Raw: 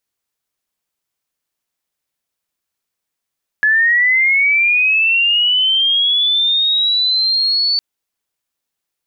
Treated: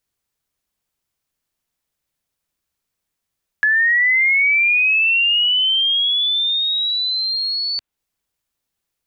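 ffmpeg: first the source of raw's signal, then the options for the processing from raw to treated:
-f lavfi -i "aevalsrc='pow(10,(-9.5-3*t/4.16)/20)*sin(2*PI*(1700*t+2800*t*t/(2*4.16)))':d=4.16:s=44100"
-filter_complex "[0:a]lowshelf=f=160:g=10.5,acrossover=split=750|3300[s0][s1][s2];[s0]acompressor=threshold=0.00251:ratio=4[s3];[s1]acompressor=threshold=0.178:ratio=4[s4];[s2]acompressor=threshold=0.0355:ratio=4[s5];[s3][s4][s5]amix=inputs=3:normalize=0"

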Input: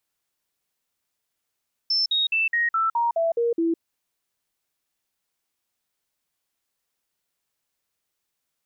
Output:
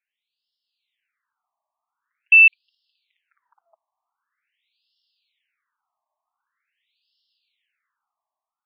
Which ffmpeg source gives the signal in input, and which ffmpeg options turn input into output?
-f lavfi -i "aevalsrc='0.112*clip(min(mod(t,0.21),0.16-mod(t,0.21))/0.005,0,1)*sin(2*PI*5310*pow(2,-floor(t/0.21)/2)*mod(t,0.21))':d=1.89:s=44100"
-af "highshelf=f=3900:g=8,dynaudnorm=f=620:g=3:m=3.55,afftfilt=real='re*between(b*sr/1024,840*pow(3900/840,0.5+0.5*sin(2*PI*0.45*pts/sr))/1.41,840*pow(3900/840,0.5+0.5*sin(2*PI*0.45*pts/sr))*1.41)':imag='im*between(b*sr/1024,840*pow(3900/840,0.5+0.5*sin(2*PI*0.45*pts/sr))/1.41,840*pow(3900/840,0.5+0.5*sin(2*PI*0.45*pts/sr))*1.41)':win_size=1024:overlap=0.75"

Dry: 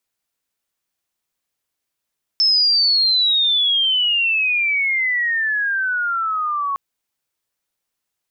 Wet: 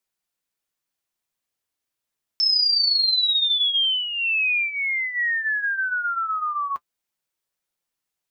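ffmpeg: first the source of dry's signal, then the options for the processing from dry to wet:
-f lavfi -i "aevalsrc='pow(10,(-12-7*t/4.36)/20)*sin(2*PI*5300*4.36/log(1100/5300)*(exp(log(1100/5300)*t/4.36)-1))':d=4.36:s=44100"
-af "flanger=delay=5.3:depth=4:regen=-50:speed=0.27:shape=sinusoidal"

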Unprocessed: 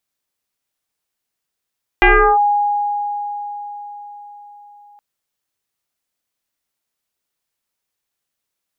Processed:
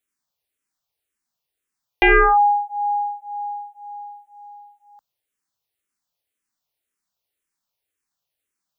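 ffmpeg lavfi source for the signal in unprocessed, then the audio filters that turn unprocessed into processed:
-f lavfi -i "aevalsrc='0.501*pow(10,-3*t/4.78)*sin(2*PI*823*t+4.2*clip(1-t/0.36,0,1)*sin(2*PI*0.48*823*t))':d=2.97:s=44100"
-filter_complex "[0:a]asplit=2[s0][s1];[s1]afreqshift=-1.9[s2];[s0][s2]amix=inputs=2:normalize=1"

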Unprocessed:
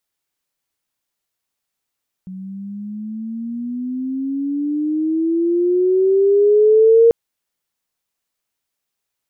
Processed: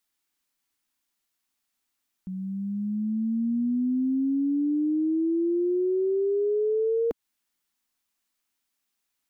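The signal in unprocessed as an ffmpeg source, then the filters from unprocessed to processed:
-f lavfi -i "aevalsrc='pow(10,(-6.5+22*(t/4.84-1))/20)*sin(2*PI*185*4.84/(16*log(2)/12)*(exp(16*log(2)/12*t/4.84)-1))':d=4.84:s=44100"
-af "equalizer=f=125:t=o:w=1:g=-11,equalizer=f=250:t=o:w=1:g=6,equalizer=f=500:t=o:w=1:g=-8,acompressor=threshold=0.0708:ratio=10"

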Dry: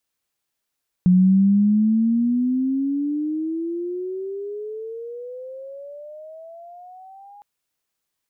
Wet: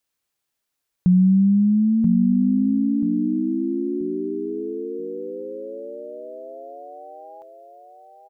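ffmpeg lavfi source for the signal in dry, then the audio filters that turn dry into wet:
-f lavfi -i "aevalsrc='pow(10,(-10.5-31*t/6.36)/20)*sin(2*PI*179*6.36/(26.5*log(2)/12)*(exp(26.5*log(2)/12*t/6.36)-1))':d=6.36:s=44100"
-af "aecho=1:1:983|1966|2949|3932:0.501|0.155|0.0482|0.0149"

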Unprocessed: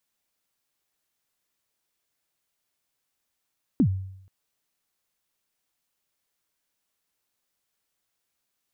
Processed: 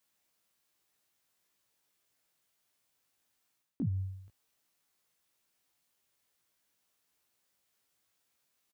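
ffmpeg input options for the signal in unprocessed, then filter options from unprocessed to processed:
-f lavfi -i "aevalsrc='0.2*pow(10,-3*t/0.74)*sin(2*PI*(310*0.078/log(95/310)*(exp(log(95/310)*min(t,0.078)/0.078)-1)+95*max(t-0.078,0)))':d=0.48:s=44100"
-filter_complex "[0:a]highpass=49,areverse,acompressor=threshold=0.0251:ratio=16,areverse,asplit=2[s0][s1];[s1]adelay=18,volume=0.631[s2];[s0][s2]amix=inputs=2:normalize=0"

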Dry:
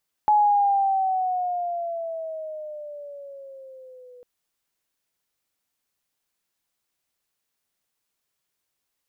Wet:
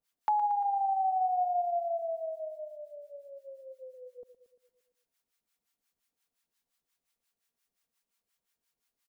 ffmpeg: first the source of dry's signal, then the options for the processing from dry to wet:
-f lavfi -i "aevalsrc='pow(10,(-14-30*t/3.95)/20)*sin(2*PI*848*3.95/(-9.5*log(2)/12)*(exp(-9.5*log(2)/12*t/3.95)-1))':d=3.95:s=44100"
-filter_complex "[0:a]aecho=1:1:4.3:0.39,acrossover=split=820[s0][s1];[s0]aeval=exprs='val(0)*(1-1/2+1/2*cos(2*PI*5.7*n/s))':c=same[s2];[s1]aeval=exprs='val(0)*(1-1/2-1/2*cos(2*PI*5.7*n/s))':c=same[s3];[s2][s3]amix=inputs=2:normalize=0,aecho=1:1:115|230|345|460|575|690|805:0.237|0.142|0.0854|0.0512|0.0307|0.0184|0.0111"

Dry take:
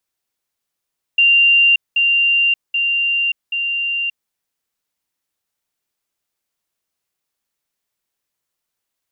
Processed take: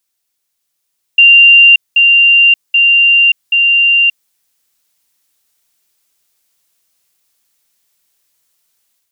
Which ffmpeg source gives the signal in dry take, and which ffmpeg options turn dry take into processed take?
-f lavfi -i "aevalsrc='pow(10,(-8.5-3*floor(t/0.78))/20)*sin(2*PI*2780*t)*clip(min(mod(t,0.78),0.58-mod(t,0.78))/0.005,0,1)':d=3.12:s=44100"
-af "highshelf=f=2600:g=10,dynaudnorm=f=470:g=3:m=2.51"

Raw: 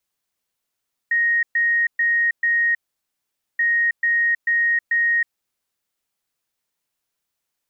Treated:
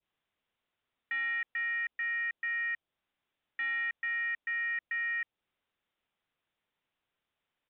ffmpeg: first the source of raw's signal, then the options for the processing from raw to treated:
-f lavfi -i "aevalsrc='0.168*sin(2*PI*1870*t)*clip(min(mod(mod(t,2.48),0.44),0.32-mod(mod(t,2.48),0.44))/0.005,0,1)*lt(mod(t,2.48),1.76)':d=4.96:s=44100"
-af "adynamicequalizer=threshold=0.0224:dfrequency=1700:dqfactor=0.79:tfrequency=1700:tqfactor=0.79:attack=5:release=100:ratio=0.375:range=3:mode=cutabove:tftype=bell,aresample=8000,asoftclip=type=tanh:threshold=0.0251,aresample=44100"

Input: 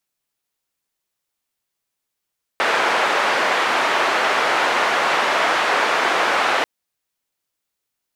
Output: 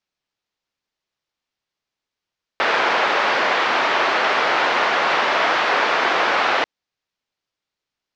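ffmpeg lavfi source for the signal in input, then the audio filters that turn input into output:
-f lavfi -i "anoisesrc=c=white:d=4.04:r=44100:seed=1,highpass=f=510,lowpass=f=1600,volume=-1.1dB"
-af "lowpass=f=5600:w=0.5412,lowpass=f=5600:w=1.3066"

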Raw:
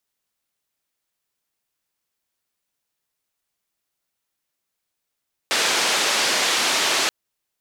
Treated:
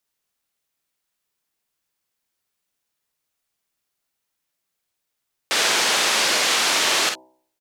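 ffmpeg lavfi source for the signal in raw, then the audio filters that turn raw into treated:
-f lavfi -i "anoisesrc=c=white:d=1.58:r=44100:seed=1,highpass=f=320,lowpass=f=5400,volume=-9.6dB"
-filter_complex "[0:a]bandreject=f=64.12:t=h:w=4,bandreject=f=128.24:t=h:w=4,bandreject=f=192.36:t=h:w=4,bandreject=f=256.48:t=h:w=4,bandreject=f=320.6:t=h:w=4,bandreject=f=384.72:t=h:w=4,bandreject=f=448.84:t=h:w=4,bandreject=f=512.96:t=h:w=4,bandreject=f=577.08:t=h:w=4,bandreject=f=641.2:t=h:w=4,bandreject=f=705.32:t=h:w=4,bandreject=f=769.44:t=h:w=4,bandreject=f=833.56:t=h:w=4,bandreject=f=897.68:t=h:w=4,bandreject=f=961.8:t=h:w=4,bandreject=f=1025.92:t=h:w=4,asplit=2[s0][s1];[s1]aecho=0:1:50|62:0.473|0.188[s2];[s0][s2]amix=inputs=2:normalize=0"

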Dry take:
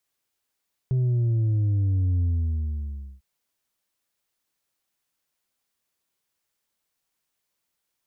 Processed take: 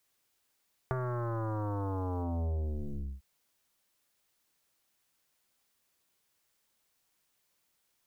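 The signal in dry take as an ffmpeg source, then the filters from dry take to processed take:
-f lavfi -i "aevalsrc='0.1*clip((2.3-t)/1,0,1)*tanh(1.5*sin(2*PI*130*2.3/log(65/130)*(exp(log(65/130)*t/2.3)-1)))/tanh(1.5)':d=2.3:s=44100"
-af "aeval=exprs='0.106*(cos(1*acos(clip(val(0)/0.106,-1,1)))-cos(1*PI/2))+0.00944*(cos(2*acos(clip(val(0)/0.106,-1,1)))-cos(2*PI/2))+0.0211*(cos(5*acos(clip(val(0)/0.106,-1,1)))-cos(5*PI/2))+0.0531*(cos(7*acos(clip(val(0)/0.106,-1,1)))-cos(7*PI/2))+0.0133*(cos(8*acos(clip(val(0)/0.106,-1,1)))-cos(8*PI/2))':c=same,acompressor=threshold=0.0282:ratio=10"

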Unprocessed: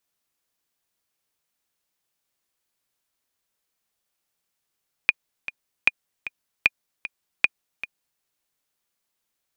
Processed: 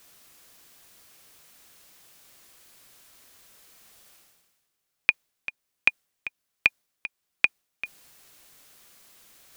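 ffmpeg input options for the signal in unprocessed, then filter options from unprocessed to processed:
-f lavfi -i "aevalsrc='pow(10,(-2.5-14.5*gte(mod(t,2*60/153),60/153))/20)*sin(2*PI*2440*mod(t,60/153))*exp(-6.91*mod(t,60/153)/0.03)':d=3.13:s=44100"
-af "areverse,acompressor=mode=upward:threshold=0.0178:ratio=2.5,areverse,bandreject=f=900:w=16"

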